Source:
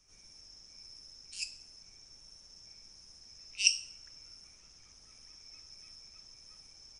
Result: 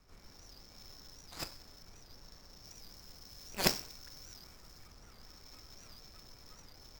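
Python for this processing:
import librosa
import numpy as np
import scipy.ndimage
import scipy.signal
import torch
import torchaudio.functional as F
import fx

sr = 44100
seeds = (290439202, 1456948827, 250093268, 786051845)

y = scipy.signal.medfilt(x, 15)
y = fx.high_shelf(y, sr, hz=4900.0, db=6.0, at=(2.64, 4.88))
y = fx.record_warp(y, sr, rpm=78.0, depth_cents=160.0)
y = F.gain(torch.from_numpy(y), 9.0).numpy()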